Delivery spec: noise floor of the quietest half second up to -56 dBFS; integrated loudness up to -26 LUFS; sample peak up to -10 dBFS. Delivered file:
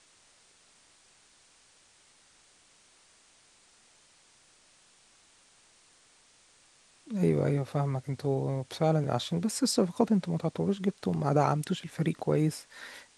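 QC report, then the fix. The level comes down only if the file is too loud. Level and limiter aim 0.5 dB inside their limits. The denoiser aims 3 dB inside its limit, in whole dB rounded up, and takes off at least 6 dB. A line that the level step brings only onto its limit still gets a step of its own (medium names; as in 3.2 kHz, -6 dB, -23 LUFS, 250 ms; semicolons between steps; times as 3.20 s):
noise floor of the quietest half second -62 dBFS: pass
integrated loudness -29.5 LUFS: pass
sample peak -11.0 dBFS: pass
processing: none needed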